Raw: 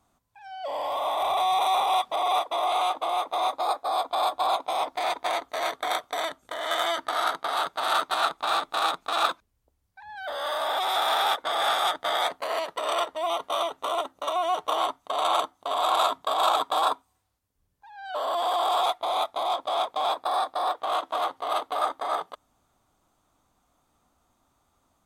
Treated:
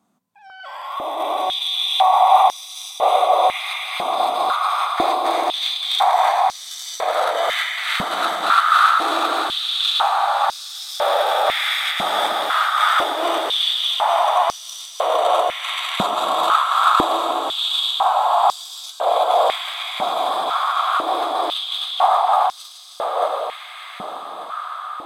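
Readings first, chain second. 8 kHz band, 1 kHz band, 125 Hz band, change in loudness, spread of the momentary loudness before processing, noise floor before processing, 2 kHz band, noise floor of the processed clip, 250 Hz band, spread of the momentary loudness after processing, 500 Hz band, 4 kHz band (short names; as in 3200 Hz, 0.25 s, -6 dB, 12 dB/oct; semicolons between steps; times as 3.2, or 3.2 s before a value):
+7.5 dB, +8.0 dB, n/a, +8.0 dB, 7 LU, -72 dBFS, +9.0 dB, -37 dBFS, +11.0 dB, 14 LU, +7.5 dB, +10.0 dB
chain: regenerating reverse delay 0.597 s, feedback 47%, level -0.5 dB; diffused feedback echo 0.786 s, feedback 61%, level -3.5 dB; stepped high-pass 2 Hz 200–5400 Hz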